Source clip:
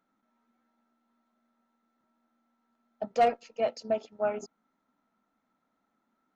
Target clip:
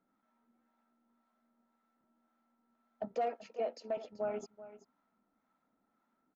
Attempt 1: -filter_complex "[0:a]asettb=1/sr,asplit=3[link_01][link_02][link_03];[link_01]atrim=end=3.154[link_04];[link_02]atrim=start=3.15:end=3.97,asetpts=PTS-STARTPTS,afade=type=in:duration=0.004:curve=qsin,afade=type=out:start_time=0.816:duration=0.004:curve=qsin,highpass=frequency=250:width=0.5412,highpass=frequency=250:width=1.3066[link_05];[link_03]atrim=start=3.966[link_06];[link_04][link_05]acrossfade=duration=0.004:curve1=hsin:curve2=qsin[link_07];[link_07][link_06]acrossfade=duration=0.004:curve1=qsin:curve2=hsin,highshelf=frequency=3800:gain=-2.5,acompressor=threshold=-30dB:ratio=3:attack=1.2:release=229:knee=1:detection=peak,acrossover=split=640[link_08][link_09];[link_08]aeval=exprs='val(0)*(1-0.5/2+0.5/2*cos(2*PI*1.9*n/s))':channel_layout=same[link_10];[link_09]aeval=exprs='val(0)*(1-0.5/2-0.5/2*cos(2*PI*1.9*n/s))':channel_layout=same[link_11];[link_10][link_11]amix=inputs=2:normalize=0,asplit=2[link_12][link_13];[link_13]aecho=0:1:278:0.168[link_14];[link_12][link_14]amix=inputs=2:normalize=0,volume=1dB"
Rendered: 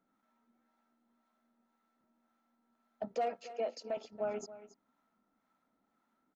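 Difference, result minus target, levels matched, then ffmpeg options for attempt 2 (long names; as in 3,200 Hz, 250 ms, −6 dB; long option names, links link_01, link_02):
8,000 Hz band +6.0 dB; echo 106 ms early
-filter_complex "[0:a]asettb=1/sr,asplit=3[link_01][link_02][link_03];[link_01]atrim=end=3.154[link_04];[link_02]atrim=start=3.15:end=3.97,asetpts=PTS-STARTPTS,afade=type=in:duration=0.004:curve=qsin,afade=type=out:start_time=0.816:duration=0.004:curve=qsin,highpass=frequency=250:width=0.5412,highpass=frequency=250:width=1.3066[link_05];[link_03]atrim=start=3.966[link_06];[link_04][link_05]acrossfade=duration=0.004:curve1=hsin:curve2=qsin[link_07];[link_07][link_06]acrossfade=duration=0.004:curve1=qsin:curve2=hsin,highshelf=frequency=3800:gain=-10.5,acompressor=threshold=-30dB:ratio=3:attack=1.2:release=229:knee=1:detection=peak,acrossover=split=640[link_08][link_09];[link_08]aeval=exprs='val(0)*(1-0.5/2+0.5/2*cos(2*PI*1.9*n/s))':channel_layout=same[link_10];[link_09]aeval=exprs='val(0)*(1-0.5/2-0.5/2*cos(2*PI*1.9*n/s))':channel_layout=same[link_11];[link_10][link_11]amix=inputs=2:normalize=0,asplit=2[link_12][link_13];[link_13]aecho=0:1:384:0.168[link_14];[link_12][link_14]amix=inputs=2:normalize=0,volume=1dB"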